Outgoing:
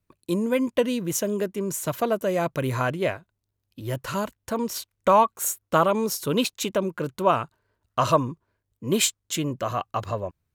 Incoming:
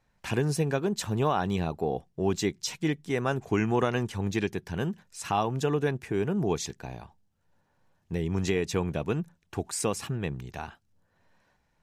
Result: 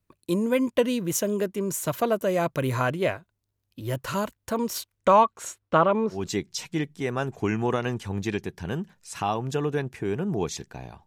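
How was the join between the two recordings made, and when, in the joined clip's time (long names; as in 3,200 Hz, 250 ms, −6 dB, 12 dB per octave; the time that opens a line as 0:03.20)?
outgoing
0:04.98–0:06.28: low-pass filter 9,800 Hz → 1,500 Hz
0:06.18: continue with incoming from 0:02.27, crossfade 0.20 s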